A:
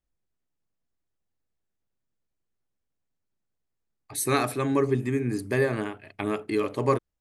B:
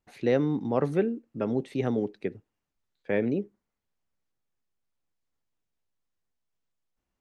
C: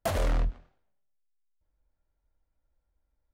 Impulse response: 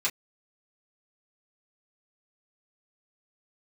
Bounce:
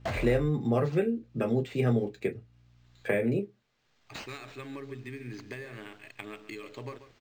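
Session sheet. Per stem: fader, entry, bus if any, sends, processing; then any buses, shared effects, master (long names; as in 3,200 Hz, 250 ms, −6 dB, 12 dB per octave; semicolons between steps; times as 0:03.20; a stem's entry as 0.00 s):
−6.5 dB, 0.00 s, no send, echo send −13 dB, meter weighting curve D; downward compressor 20 to 1, threshold −31 dBFS, peak gain reduction 17.5 dB
−3.5 dB, 0.00 s, send −5.5 dB, no echo send, high-shelf EQ 5,400 Hz +11.5 dB; notch filter 960 Hz, Q 5.3; multiband upward and downward compressor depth 70%
−2.0 dB, 0.00 s, no send, no echo send, mains hum 60 Hz, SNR 18 dB; automatic ducking −12 dB, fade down 0.40 s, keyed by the second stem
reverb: on, pre-delay 3 ms
echo: single-tap delay 138 ms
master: parametric band 120 Hz +11.5 dB 0.22 octaves; linearly interpolated sample-rate reduction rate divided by 4×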